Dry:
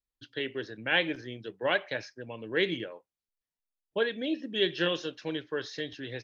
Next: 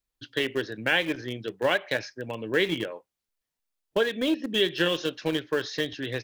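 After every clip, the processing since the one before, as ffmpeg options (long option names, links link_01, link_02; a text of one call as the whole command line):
ffmpeg -i in.wav -filter_complex "[0:a]asplit=2[link_01][link_02];[link_02]aeval=exprs='val(0)*gte(abs(val(0)),0.0335)':channel_layout=same,volume=-9dB[link_03];[link_01][link_03]amix=inputs=2:normalize=0,acompressor=threshold=-28dB:ratio=3,volume=6.5dB" out.wav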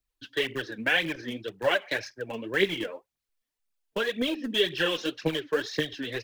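ffmpeg -i in.wav -filter_complex "[0:a]aphaser=in_gain=1:out_gain=1:delay=4.7:decay=0.62:speed=1.9:type=triangular,acrossover=split=200|1600|2300[link_01][link_02][link_03][link_04];[link_03]crystalizer=i=4:c=0[link_05];[link_01][link_02][link_05][link_04]amix=inputs=4:normalize=0,volume=-3.5dB" out.wav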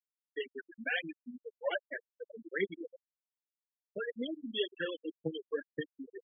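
ffmpeg -i in.wav -af "afftfilt=real='re*gte(hypot(re,im),0.141)':imag='im*gte(hypot(re,im),0.141)':win_size=1024:overlap=0.75,volume=-8.5dB" out.wav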